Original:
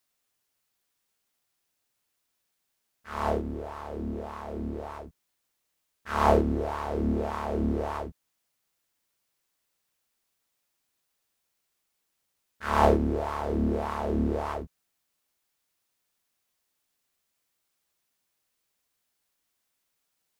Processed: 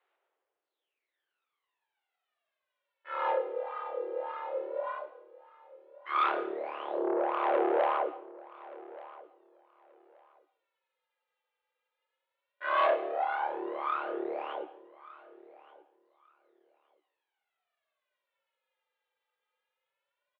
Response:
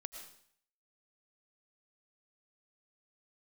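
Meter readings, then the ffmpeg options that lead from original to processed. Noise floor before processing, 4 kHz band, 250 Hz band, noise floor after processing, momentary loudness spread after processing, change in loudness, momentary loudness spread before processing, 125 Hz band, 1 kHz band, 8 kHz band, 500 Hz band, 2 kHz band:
−79 dBFS, −1.5 dB, −11.0 dB, below −85 dBFS, 20 LU, −3.0 dB, 16 LU, below −40 dB, −0.5 dB, below −25 dB, −2.0 dB, +1.0 dB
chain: -filter_complex "[0:a]aemphasis=mode=reproduction:type=75kf,aphaser=in_gain=1:out_gain=1:delay=2.7:decay=0.79:speed=0.13:type=sinusoidal,asoftclip=type=tanh:threshold=-19dB,aecho=1:1:1178|2356:0.106|0.0201,asplit=2[link_01][link_02];[1:a]atrim=start_sample=2205[link_03];[link_02][link_03]afir=irnorm=-1:irlink=0,volume=-2.5dB[link_04];[link_01][link_04]amix=inputs=2:normalize=0,highpass=frequency=250:width_type=q:width=0.5412,highpass=frequency=250:width_type=q:width=1.307,lowpass=frequency=3500:width_type=q:width=0.5176,lowpass=frequency=3500:width_type=q:width=0.7071,lowpass=frequency=3500:width_type=q:width=1.932,afreqshift=130,volume=-5dB"

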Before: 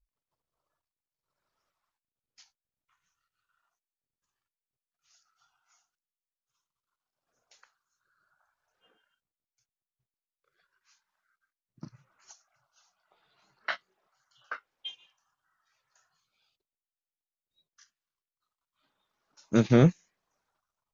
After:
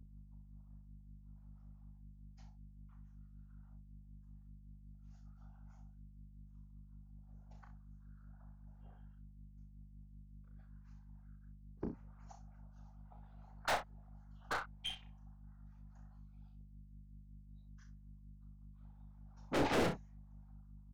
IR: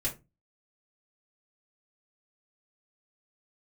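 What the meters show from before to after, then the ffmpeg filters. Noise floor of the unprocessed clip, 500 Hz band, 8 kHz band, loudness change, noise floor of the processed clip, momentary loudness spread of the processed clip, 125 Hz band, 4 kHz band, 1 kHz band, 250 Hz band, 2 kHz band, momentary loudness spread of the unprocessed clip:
below −85 dBFS, −8.5 dB, can't be measured, −12.0 dB, −59 dBFS, 19 LU, −16.0 dB, −2.0 dB, +1.0 dB, −13.5 dB, −3.5 dB, 21 LU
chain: -filter_complex "[0:a]highpass=330,afwtdn=0.00316,equalizer=frequency=780:width=3.5:gain=14.5,acrossover=split=560|1700[link_01][link_02][link_03];[link_01]dynaudnorm=framelen=150:gausssize=17:maxgain=15dB[link_04];[link_02]aeval=exprs='0.15*sin(PI/2*3.16*val(0)/0.15)':channel_layout=same[link_05];[link_04][link_05][link_03]amix=inputs=3:normalize=0,afftfilt=real='hypot(re,im)*cos(2*PI*random(0))':imag='hypot(re,im)*sin(2*PI*random(1))':win_size=512:overlap=0.75,aeval=exprs='val(0)+0.00112*(sin(2*PI*50*n/s)+sin(2*PI*2*50*n/s)/2+sin(2*PI*3*50*n/s)/3+sin(2*PI*4*50*n/s)/4+sin(2*PI*5*50*n/s)/5)':channel_layout=same,aeval=exprs='(tanh(70.8*val(0)+0.2)-tanh(0.2))/70.8':channel_layout=same,acrossover=split=730[link_06][link_07];[link_06]aeval=exprs='val(0)*(1-0.5/2+0.5/2*cos(2*PI*5.3*n/s))':channel_layout=same[link_08];[link_07]aeval=exprs='val(0)*(1-0.5/2-0.5/2*cos(2*PI*5.3*n/s))':channel_layout=same[link_09];[link_08][link_09]amix=inputs=2:normalize=0,asplit=2[link_10][link_11];[link_11]aecho=0:1:34|63:0.473|0.237[link_12];[link_10][link_12]amix=inputs=2:normalize=0,volume=7.5dB"

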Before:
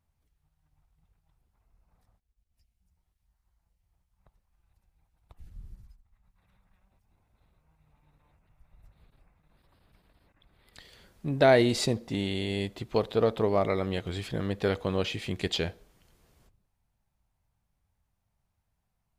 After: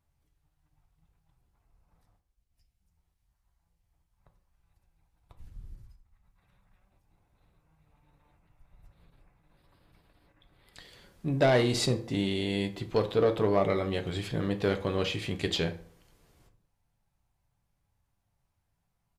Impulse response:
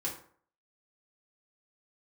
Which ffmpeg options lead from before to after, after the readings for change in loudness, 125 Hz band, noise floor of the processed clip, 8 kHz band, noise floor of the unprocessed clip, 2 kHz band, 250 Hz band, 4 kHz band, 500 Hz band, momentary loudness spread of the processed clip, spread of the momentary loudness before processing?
−0.5 dB, +0.5 dB, −78 dBFS, +0.5 dB, −79 dBFS, −1.5 dB, 0.0 dB, 0.0 dB, −1.0 dB, 9 LU, 12 LU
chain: -filter_complex "[0:a]asoftclip=type=tanh:threshold=-16.5dB,aresample=32000,aresample=44100,asplit=2[link_01][link_02];[1:a]atrim=start_sample=2205,lowpass=8900,adelay=7[link_03];[link_02][link_03]afir=irnorm=-1:irlink=0,volume=-8.5dB[link_04];[link_01][link_04]amix=inputs=2:normalize=0"

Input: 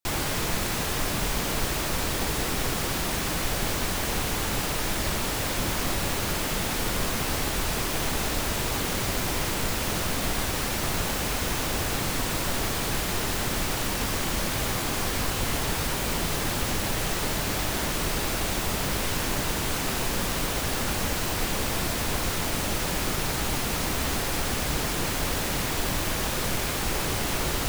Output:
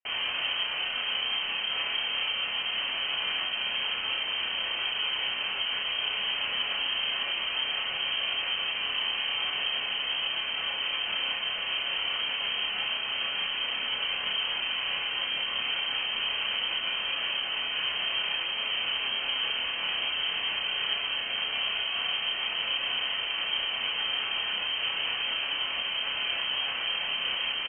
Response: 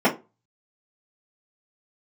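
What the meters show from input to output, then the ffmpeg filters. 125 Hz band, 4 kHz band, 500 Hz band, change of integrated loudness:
below −25 dB, +6.0 dB, −13.5 dB, −1.0 dB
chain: -filter_complex "[0:a]equalizer=frequency=72:width_type=o:width=1.1:gain=6,alimiter=limit=-19dB:level=0:latency=1:release=159,asplit=2[link_01][link_02];[link_02]adelay=30,volume=-2.5dB[link_03];[link_01][link_03]amix=inputs=2:normalize=0,asplit=2[link_04][link_05];[1:a]atrim=start_sample=2205,asetrate=42777,aresample=44100[link_06];[link_05][link_06]afir=irnorm=-1:irlink=0,volume=-23dB[link_07];[link_04][link_07]amix=inputs=2:normalize=0,lowpass=frequency=2700:width_type=q:width=0.5098,lowpass=frequency=2700:width_type=q:width=0.6013,lowpass=frequency=2700:width_type=q:width=0.9,lowpass=frequency=2700:width_type=q:width=2.563,afreqshift=-3200,volume=-4dB"

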